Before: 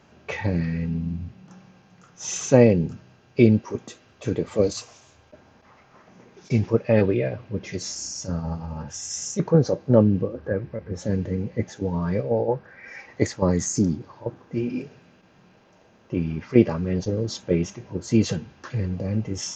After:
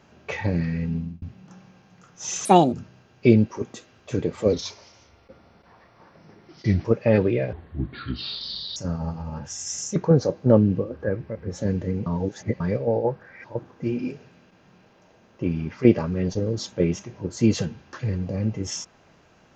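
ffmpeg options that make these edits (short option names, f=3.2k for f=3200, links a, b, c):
-filter_complex "[0:a]asplit=11[a][b][c][d][e][f][g][h][i][j][k];[a]atrim=end=1.22,asetpts=PTS-STARTPTS,afade=t=out:st=0.97:d=0.25[l];[b]atrim=start=1.22:end=2.454,asetpts=PTS-STARTPTS,afade=t=in:d=0.004:c=hsin[m];[c]atrim=start=2.45:end=2.86,asetpts=PTS-STARTPTS,asetrate=65709,aresample=44100[n];[d]atrim=start=2.856:end=4.664[o];[e]atrim=start=4.66:end=6.68,asetpts=PTS-STARTPTS,asetrate=38367,aresample=44100,atrim=end_sample=102393,asetpts=PTS-STARTPTS[p];[f]atrim=start=6.676:end=7.364[q];[g]atrim=start=7.36:end=8.2,asetpts=PTS-STARTPTS,asetrate=29988,aresample=44100,atrim=end_sample=54476,asetpts=PTS-STARTPTS[r];[h]atrim=start=8.196:end=11.502[s];[i]atrim=start=11.498:end=12.042,asetpts=PTS-STARTPTS,areverse[t];[j]atrim=start=12.038:end=12.882[u];[k]atrim=start=14.148[v];[l][m]concat=n=2:v=0:a=1[w];[w][n]acrossfade=d=0.004:c1=hsin:c2=hsin[x];[x][o]acrossfade=d=0.004:c1=hsin:c2=hsin[y];[y][p]acrossfade=d=0.004:c1=hsin:c2=hsin[z];[z][q]acrossfade=d=0.004:c1=hsin:c2=hsin[aa];[aa][r]acrossfade=d=0.004:c1=hsin:c2=hsin[ab];[ab][s]acrossfade=d=0.004:c1=hsin:c2=hsin[ac];[ac][t]acrossfade=d=0.004:c1=hsin:c2=hsin[ad];[ad][u]acrossfade=d=0.004:c1=hsin:c2=hsin[ae];[ae][v]acrossfade=d=0.004:c1=hsin:c2=hsin"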